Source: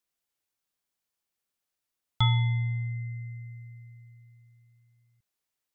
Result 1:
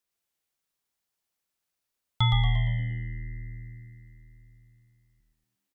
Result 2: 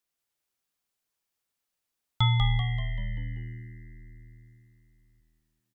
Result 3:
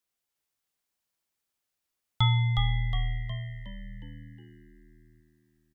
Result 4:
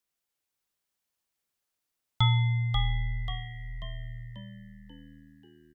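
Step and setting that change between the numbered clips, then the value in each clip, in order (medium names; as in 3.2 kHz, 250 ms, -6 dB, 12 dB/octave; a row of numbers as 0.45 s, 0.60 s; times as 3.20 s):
frequency-shifting echo, time: 116 ms, 193 ms, 363 ms, 538 ms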